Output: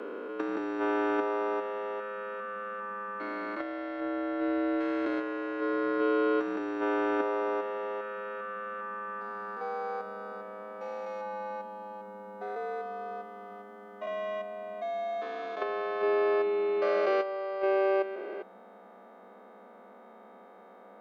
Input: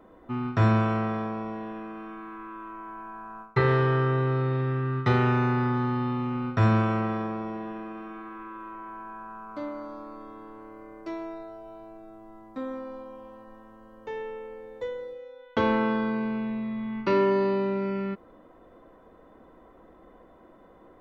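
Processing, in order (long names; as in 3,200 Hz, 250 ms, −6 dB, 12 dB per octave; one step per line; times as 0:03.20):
spectrum averaged block by block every 400 ms
frequency shifter +190 Hz
compressor whose output falls as the input rises −28 dBFS, ratio −0.5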